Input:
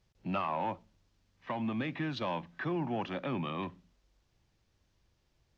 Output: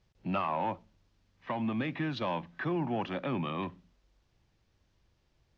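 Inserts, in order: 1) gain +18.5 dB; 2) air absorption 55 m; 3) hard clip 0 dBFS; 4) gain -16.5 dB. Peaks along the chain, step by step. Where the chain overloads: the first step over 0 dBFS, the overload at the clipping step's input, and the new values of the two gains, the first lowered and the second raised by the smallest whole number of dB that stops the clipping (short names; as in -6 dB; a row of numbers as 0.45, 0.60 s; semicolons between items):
-3.0, -3.5, -3.5, -20.0 dBFS; no overload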